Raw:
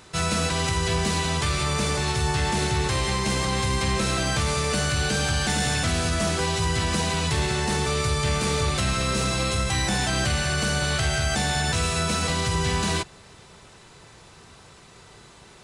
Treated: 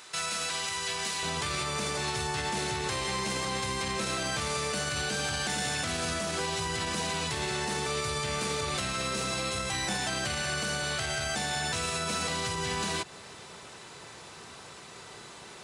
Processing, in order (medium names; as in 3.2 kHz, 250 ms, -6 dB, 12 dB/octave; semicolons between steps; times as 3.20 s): high-pass 1.4 kHz 6 dB/octave, from 1.23 s 260 Hz; compression, threshold -29 dBFS, peak gain reduction 7 dB; peak limiter -25.5 dBFS, peak gain reduction 6 dB; trim +3.5 dB